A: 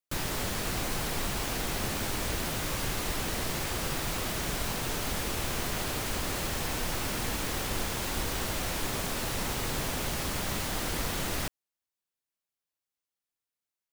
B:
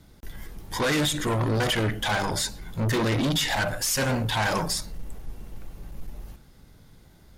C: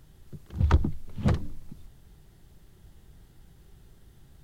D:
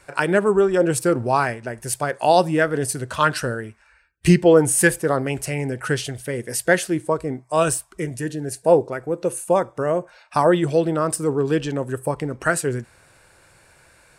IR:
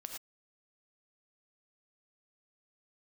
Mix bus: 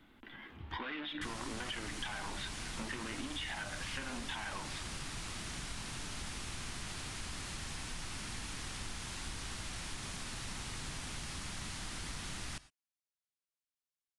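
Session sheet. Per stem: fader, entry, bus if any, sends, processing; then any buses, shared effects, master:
-8.5 dB, 1.10 s, no bus, send -10 dB, elliptic low-pass 10000 Hz, stop band 60 dB
+1.0 dB, 0.00 s, bus A, no send, elliptic band-pass 250–3100 Hz, stop band 40 dB
-14.0 dB, 0.00 s, bus A, no send, compressor 1.5:1, threshold -51 dBFS, peak gain reduction 13 dB
off
bus A: 0.0 dB, compressor, threshold -32 dBFS, peak gain reduction 11.5 dB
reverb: on, pre-delay 3 ms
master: bell 510 Hz -11 dB 1.3 oct; compressor, threshold -37 dBFS, peak gain reduction 6.5 dB

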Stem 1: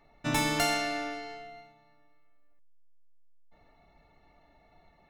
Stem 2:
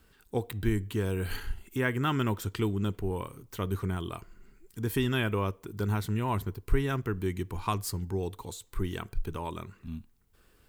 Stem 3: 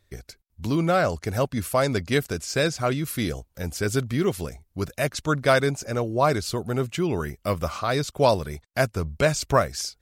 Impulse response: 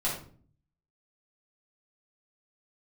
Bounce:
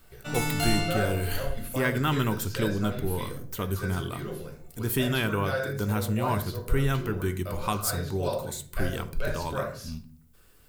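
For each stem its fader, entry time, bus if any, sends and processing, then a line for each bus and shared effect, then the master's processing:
-7.0 dB, 0.00 s, bus A, send -4 dB, dry
+0.5 dB, 0.00 s, no bus, send -16.5 dB, dry
-12.0 dB, 0.00 s, bus A, send -11.5 dB, thirty-one-band EQ 500 Hz +7 dB, 1600 Hz +11 dB, 4000 Hz +3 dB, 8000 Hz -9 dB
bus A: 0.0 dB, fixed phaser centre 1200 Hz, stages 8; compressor, threshold -41 dBFS, peak gain reduction 15.5 dB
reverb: on, RT60 0.45 s, pre-delay 4 ms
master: high shelf 6000 Hz +8.5 dB

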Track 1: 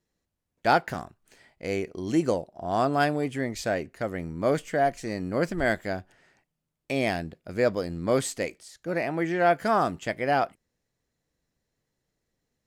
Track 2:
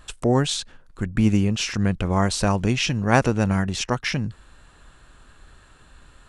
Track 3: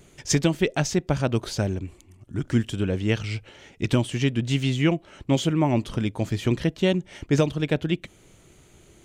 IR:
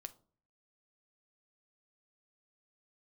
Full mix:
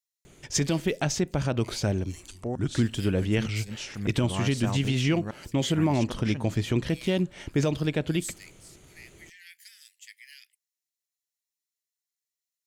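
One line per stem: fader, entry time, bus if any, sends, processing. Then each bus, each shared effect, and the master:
-5.0 dB, 0.00 s, send -7 dB, steep high-pass 1800 Hz 72 dB/oct; differentiator
-12.0 dB, 2.20 s, no send, flipped gate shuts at -8 dBFS, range -30 dB
-2.0 dB, 0.25 s, send -8.5 dB, dry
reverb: on, RT60 0.45 s, pre-delay 6 ms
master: limiter -14.5 dBFS, peak gain reduction 7.5 dB

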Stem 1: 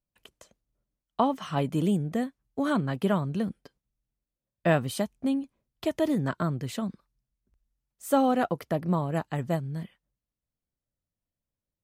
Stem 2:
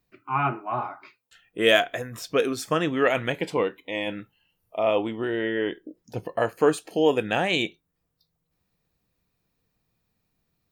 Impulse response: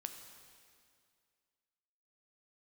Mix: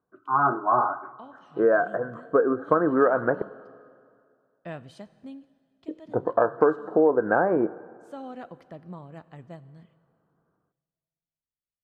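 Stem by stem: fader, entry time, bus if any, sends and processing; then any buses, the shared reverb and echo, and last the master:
-17.5 dB, 0.00 s, send -4.5 dB, auto duck -13 dB, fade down 0.30 s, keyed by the second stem
+2.5 dB, 0.00 s, muted 3.42–5.88, send -9.5 dB, HPF 390 Hz 6 dB/oct; AGC gain up to 8 dB; rippled Chebyshev low-pass 1600 Hz, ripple 3 dB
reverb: on, RT60 2.2 s, pre-delay 5 ms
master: LPF 5800 Hz 12 dB/oct; compressor 6:1, threshold -16 dBFS, peak gain reduction 9.5 dB

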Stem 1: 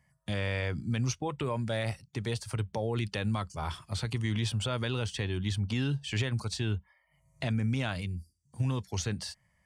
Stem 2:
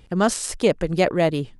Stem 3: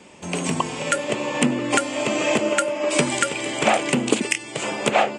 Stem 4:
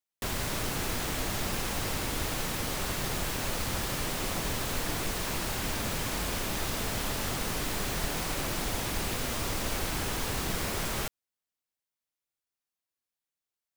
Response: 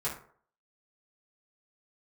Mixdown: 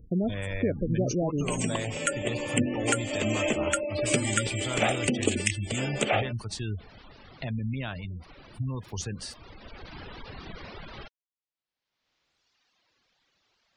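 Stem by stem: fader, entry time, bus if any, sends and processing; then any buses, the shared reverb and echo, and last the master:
-2.0 dB, 0.00 s, no send, bit-crush 9-bit
+0.5 dB, 0.00 s, no send, EQ curve 260 Hz 0 dB, 650 Hz -6 dB, 1000 Hz -23 dB, 5900 Hz -18 dB; compressor 6:1, threshold -24 dBFS, peak gain reduction 8.5 dB
-6.0 dB, 1.15 s, no send, bell 980 Hz -9.5 dB 0.5 oct
-6.0 dB, 0.00 s, no send, LPF 4700 Hz 24 dB/oct; reverb removal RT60 1.4 s; upward compressor, threshold -41 dBFS; auto duck -8 dB, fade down 0.90 s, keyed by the first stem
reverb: off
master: spectral gate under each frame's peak -25 dB strong; high shelf 8400 Hz +8.5 dB

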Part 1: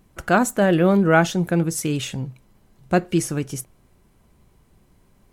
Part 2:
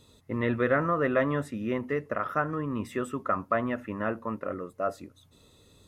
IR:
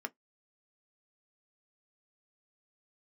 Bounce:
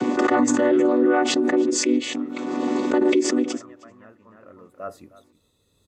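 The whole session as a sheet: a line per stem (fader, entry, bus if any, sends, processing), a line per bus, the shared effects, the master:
+1.0 dB, 0.00 s, no send, echo send -23 dB, chord vocoder minor triad, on B3; backwards sustainer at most 27 dB/s
-2.5 dB, 0.00 s, no send, echo send -20 dB, expander -52 dBFS; high shelf 8800 Hz +5.5 dB; auto duck -17 dB, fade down 1.35 s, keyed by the first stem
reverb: off
echo: echo 0.313 s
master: limiter -10 dBFS, peak gain reduction 7 dB

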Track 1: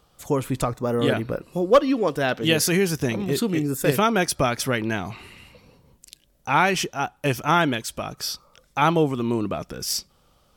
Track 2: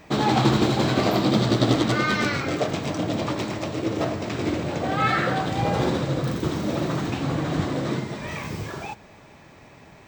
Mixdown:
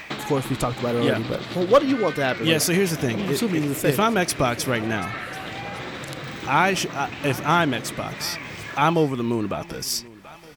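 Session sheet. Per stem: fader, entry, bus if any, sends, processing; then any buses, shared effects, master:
0.0 dB, 0.00 s, no send, echo send -20.5 dB, dry
0.0 dB, 0.00 s, no send, echo send -20.5 dB, bell 2200 Hz +12 dB 1.7 oct; compressor, threshold -23 dBFS, peak gain reduction 11.5 dB; auto duck -8 dB, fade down 0.20 s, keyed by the first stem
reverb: off
echo: feedback echo 0.734 s, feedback 31%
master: mismatched tape noise reduction encoder only

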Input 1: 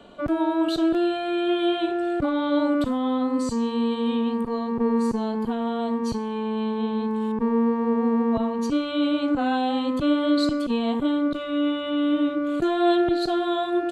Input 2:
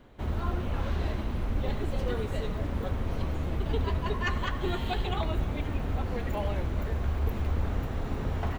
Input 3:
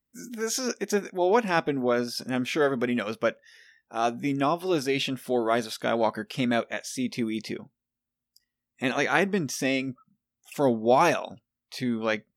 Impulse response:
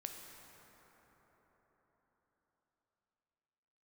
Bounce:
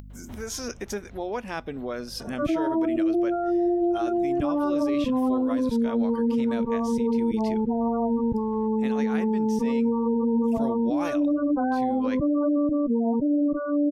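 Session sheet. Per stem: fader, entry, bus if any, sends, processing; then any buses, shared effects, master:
+2.0 dB, 2.20 s, no send, LPF 2400 Hz 12 dB/oct; spectral gate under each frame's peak -15 dB strong
-19.5 dB, 0.10 s, no send, auto duck -7 dB, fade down 1.20 s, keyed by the third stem
-19.0 dB, 0.00 s, no send, hum 50 Hz, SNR 18 dB; AGC gain up to 15 dB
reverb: off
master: upward compressor, threshold -26 dBFS; limiter -17.5 dBFS, peak gain reduction 8 dB

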